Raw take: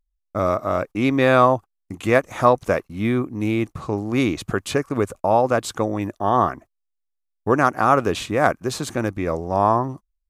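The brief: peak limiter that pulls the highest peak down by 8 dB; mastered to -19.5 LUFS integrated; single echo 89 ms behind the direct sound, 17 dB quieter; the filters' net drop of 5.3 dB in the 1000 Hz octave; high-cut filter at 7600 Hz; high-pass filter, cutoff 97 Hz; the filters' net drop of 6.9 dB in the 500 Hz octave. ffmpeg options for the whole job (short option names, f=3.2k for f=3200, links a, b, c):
-af "highpass=97,lowpass=7.6k,equalizer=f=500:t=o:g=-7.5,equalizer=f=1k:t=o:g=-4.5,alimiter=limit=-13.5dB:level=0:latency=1,aecho=1:1:89:0.141,volume=8dB"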